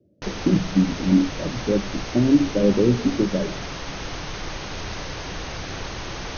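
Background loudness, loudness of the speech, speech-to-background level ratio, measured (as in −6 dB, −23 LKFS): −32.0 LKFS, −21.5 LKFS, 10.5 dB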